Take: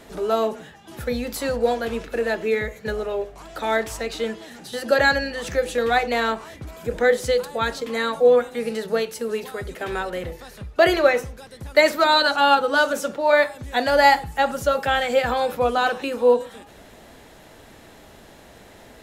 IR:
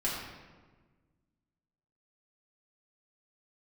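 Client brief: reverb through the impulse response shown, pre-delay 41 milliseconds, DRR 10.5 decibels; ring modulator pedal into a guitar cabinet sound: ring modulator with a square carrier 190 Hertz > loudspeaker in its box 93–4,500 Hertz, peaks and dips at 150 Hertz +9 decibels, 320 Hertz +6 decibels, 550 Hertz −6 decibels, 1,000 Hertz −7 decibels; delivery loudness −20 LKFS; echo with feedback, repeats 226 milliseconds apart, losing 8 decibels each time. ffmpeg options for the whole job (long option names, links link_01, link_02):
-filter_complex "[0:a]aecho=1:1:226|452|678|904|1130:0.398|0.159|0.0637|0.0255|0.0102,asplit=2[link_01][link_02];[1:a]atrim=start_sample=2205,adelay=41[link_03];[link_02][link_03]afir=irnorm=-1:irlink=0,volume=-17.5dB[link_04];[link_01][link_04]amix=inputs=2:normalize=0,aeval=exprs='val(0)*sgn(sin(2*PI*190*n/s))':channel_layout=same,highpass=93,equalizer=frequency=150:width_type=q:width=4:gain=9,equalizer=frequency=320:width_type=q:width=4:gain=6,equalizer=frequency=550:width_type=q:width=4:gain=-6,equalizer=frequency=1000:width_type=q:width=4:gain=-7,lowpass=frequency=4500:width=0.5412,lowpass=frequency=4500:width=1.3066,volume=0.5dB"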